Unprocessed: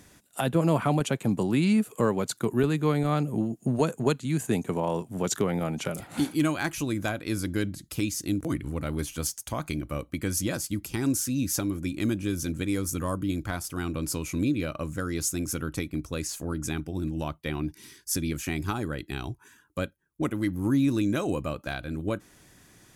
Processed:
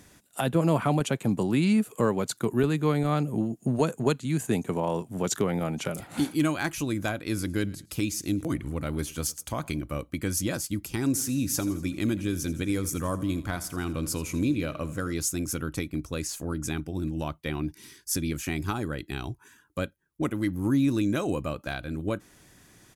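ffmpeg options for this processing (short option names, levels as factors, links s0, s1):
-filter_complex "[0:a]asplit=3[s0][s1][s2];[s0]afade=t=out:st=7.36:d=0.02[s3];[s1]aecho=1:1:108|216:0.075|0.0202,afade=t=in:st=7.36:d=0.02,afade=t=out:st=9.78:d=0.02[s4];[s2]afade=t=in:st=9.78:d=0.02[s5];[s3][s4][s5]amix=inputs=3:normalize=0,asplit=3[s6][s7][s8];[s6]afade=t=out:st=11.13:d=0.02[s9];[s7]aecho=1:1:83|166|249|332|415:0.158|0.0888|0.0497|0.0278|0.0156,afade=t=in:st=11.13:d=0.02,afade=t=out:st=15.12:d=0.02[s10];[s8]afade=t=in:st=15.12:d=0.02[s11];[s9][s10][s11]amix=inputs=3:normalize=0"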